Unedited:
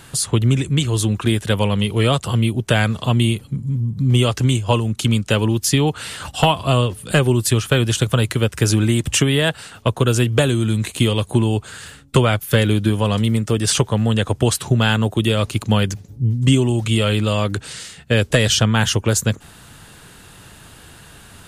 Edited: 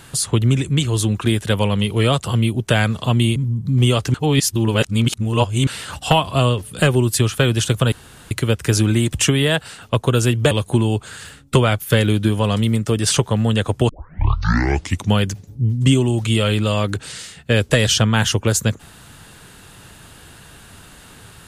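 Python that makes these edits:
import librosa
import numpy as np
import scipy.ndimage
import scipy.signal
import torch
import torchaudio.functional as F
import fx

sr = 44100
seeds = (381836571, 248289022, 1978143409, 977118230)

y = fx.edit(x, sr, fx.cut(start_s=3.36, length_s=0.32),
    fx.reverse_span(start_s=4.46, length_s=1.53),
    fx.insert_room_tone(at_s=8.24, length_s=0.39),
    fx.cut(start_s=10.44, length_s=0.68),
    fx.tape_start(start_s=14.5, length_s=1.26), tone=tone)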